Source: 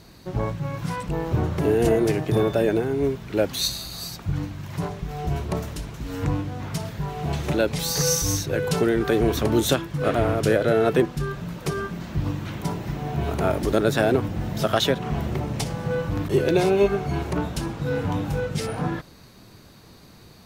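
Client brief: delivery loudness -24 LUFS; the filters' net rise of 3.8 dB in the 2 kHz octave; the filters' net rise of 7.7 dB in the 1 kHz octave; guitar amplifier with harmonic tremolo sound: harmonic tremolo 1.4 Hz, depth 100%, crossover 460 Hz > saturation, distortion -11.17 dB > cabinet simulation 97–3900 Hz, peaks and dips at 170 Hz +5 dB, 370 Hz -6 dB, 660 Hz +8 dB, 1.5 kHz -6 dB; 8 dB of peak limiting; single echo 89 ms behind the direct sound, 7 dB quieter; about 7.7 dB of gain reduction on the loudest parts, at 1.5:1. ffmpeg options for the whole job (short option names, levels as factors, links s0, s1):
-filter_complex "[0:a]equalizer=f=1000:t=o:g=6,equalizer=f=2000:t=o:g=7,acompressor=threshold=0.0178:ratio=1.5,alimiter=limit=0.126:level=0:latency=1,aecho=1:1:89:0.447,acrossover=split=460[s0][s1];[s0]aeval=exprs='val(0)*(1-1/2+1/2*cos(2*PI*1.4*n/s))':c=same[s2];[s1]aeval=exprs='val(0)*(1-1/2-1/2*cos(2*PI*1.4*n/s))':c=same[s3];[s2][s3]amix=inputs=2:normalize=0,asoftclip=threshold=0.0266,highpass=97,equalizer=f=170:t=q:w=4:g=5,equalizer=f=370:t=q:w=4:g=-6,equalizer=f=660:t=q:w=4:g=8,equalizer=f=1500:t=q:w=4:g=-6,lowpass=f=3900:w=0.5412,lowpass=f=3900:w=1.3066,volume=4.47"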